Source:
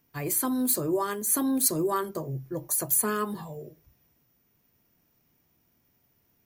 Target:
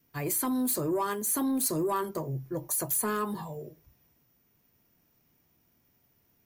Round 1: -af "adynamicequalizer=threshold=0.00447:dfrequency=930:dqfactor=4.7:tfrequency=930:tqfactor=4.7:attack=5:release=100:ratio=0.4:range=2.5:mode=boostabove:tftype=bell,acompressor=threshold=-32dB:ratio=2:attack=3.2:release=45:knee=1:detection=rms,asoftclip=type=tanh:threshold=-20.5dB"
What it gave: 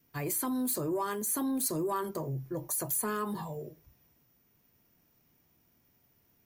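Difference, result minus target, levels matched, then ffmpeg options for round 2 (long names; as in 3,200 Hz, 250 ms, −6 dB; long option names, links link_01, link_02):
downward compressor: peak gain reduction +4 dB
-af "adynamicequalizer=threshold=0.00447:dfrequency=930:dqfactor=4.7:tfrequency=930:tqfactor=4.7:attack=5:release=100:ratio=0.4:range=2.5:mode=boostabove:tftype=bell,acompressor=threshold=-24.5dB:ratio=2:attack=3.2:release=45:knee=1:detection=rms,asoftclip=type=tanh:threshold=-20.5dB"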